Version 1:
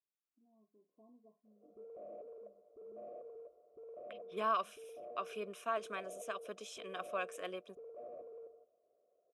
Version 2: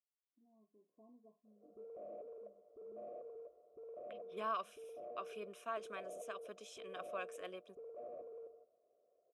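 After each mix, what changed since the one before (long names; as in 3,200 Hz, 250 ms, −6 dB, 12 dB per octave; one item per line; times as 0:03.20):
second voice −5.5 dB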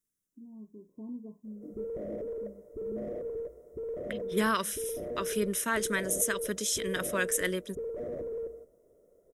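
master: remove formant filter a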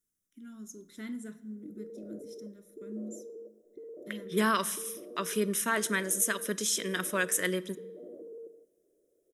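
first voice: remove linear-phase brick-wall low-pass 1,100 Hz
background: add four-pole ladder band-pass 360 Hz, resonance 60%
reverb: on, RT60 1.0 s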